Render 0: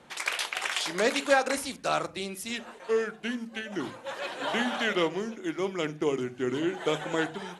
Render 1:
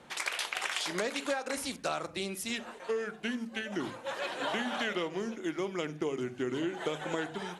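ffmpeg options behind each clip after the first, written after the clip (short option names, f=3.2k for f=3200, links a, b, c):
-af "acompressor=threshold=-29dB:ratio=12"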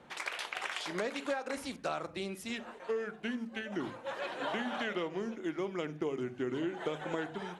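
-af "highshelf=f=3.9k:g=-10,volume=-1.5dB"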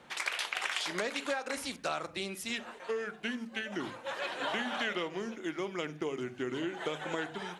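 -af "tiltshelf=f=1.3k:g=-4,volume=2.5dB"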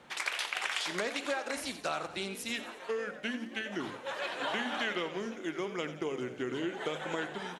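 -filter_complex "[0:a]asplit=7[a][b][c][d][e][f][g];[b]adelay=88,afreqshift=51,volume=-13dB[h];[c]adelay=176,afreqshift=102,volume=-17.9dB[i];[d]adelay=264,afreqshift=153,volume=-22.8dB[j];[e]adelay=352,afreqshift=204,volume=-27.6dB[k];[f]adelay=440,afreqshift=255,volume=-32.5dB[l];[g]adelay=528,afreqshift=306,volume=-37.4dB[m];[a][h][i][j][k][l][m]amix=inputs=7:normalize=0"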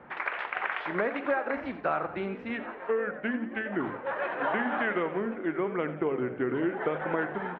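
-af "lowpass=f=1.9k:w=0.5412,lowpass=f=1.9k:w=1.3066,volume=6.5dB"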